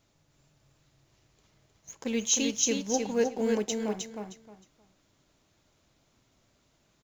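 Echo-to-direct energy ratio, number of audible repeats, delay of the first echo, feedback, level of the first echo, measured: −4.0 dB, 3, 311 ms, 22%, −4.0 dB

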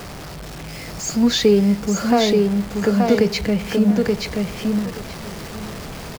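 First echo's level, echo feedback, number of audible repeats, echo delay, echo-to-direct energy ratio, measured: −3.5 dB, 18%, 2, 878 ms, −3.5 dB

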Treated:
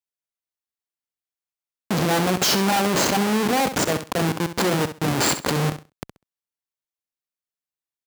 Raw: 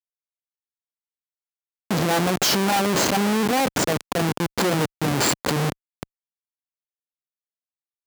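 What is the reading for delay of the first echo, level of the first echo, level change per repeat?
66 ms, −11.0 dB, −14.5 dB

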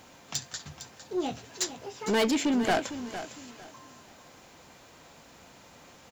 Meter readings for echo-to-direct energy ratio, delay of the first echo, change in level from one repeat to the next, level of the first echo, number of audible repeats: −11.5 dB, 456 ms, −11.5 dB, −12.0 dB, 2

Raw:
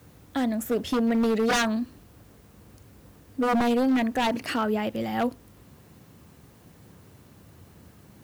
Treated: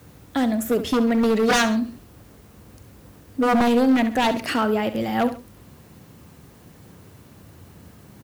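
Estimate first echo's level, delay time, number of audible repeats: −12.5 dB, 68 ms, 2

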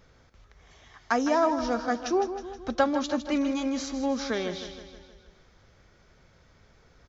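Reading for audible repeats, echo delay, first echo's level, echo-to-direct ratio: 5, 158 ms, −10.5 dB, −9.0 dB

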